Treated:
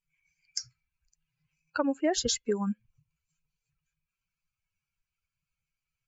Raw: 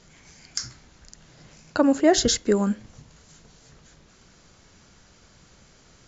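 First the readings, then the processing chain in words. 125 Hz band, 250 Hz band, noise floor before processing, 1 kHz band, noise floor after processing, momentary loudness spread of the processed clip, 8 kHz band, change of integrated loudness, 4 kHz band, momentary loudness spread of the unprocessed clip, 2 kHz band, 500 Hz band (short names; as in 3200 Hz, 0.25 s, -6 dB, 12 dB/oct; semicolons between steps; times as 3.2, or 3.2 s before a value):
-8.5 dB, -9.5 dB, -56 dBFS, -8.0 dB, under -85 dBFS, 11 LU, n/a, -8.0 dB, -6.5 dB, 15 LU, -7.5 dB, -9.0 dB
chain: per-bin expansion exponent 2; low shelf 320 Hz -5.5 dB; compressor 3:1, threshold -25 dBFS, peak gain reduction 8 dB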